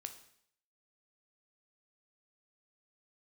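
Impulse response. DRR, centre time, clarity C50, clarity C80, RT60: 7.0 dB, 10 ms, 10.5 dB, 14.0 dB, 0.65 s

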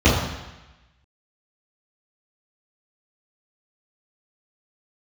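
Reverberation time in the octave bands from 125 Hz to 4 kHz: 1.1, 1.0, 0.95, 1.1, 1.2, 1.1 s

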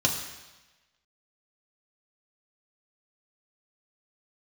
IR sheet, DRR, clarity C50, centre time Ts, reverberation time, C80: 0.5 dB, 6.5 dB, 33 ms, 1.1 s, 8.0 dB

